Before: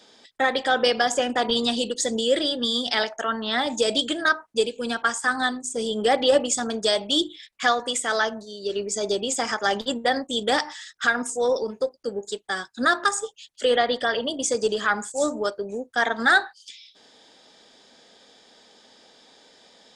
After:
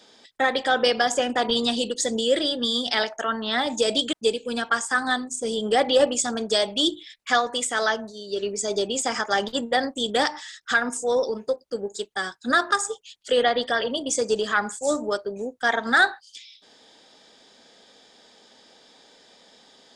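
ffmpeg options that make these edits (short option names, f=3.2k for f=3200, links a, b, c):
-filter_complex "[0:a]asplit=2[a][b];[a]atrim=end=4.132[c];[b]atrim=start=4.458[d];[c][d]acrossfade=d=0.004:c1=hsin:c2=hsin"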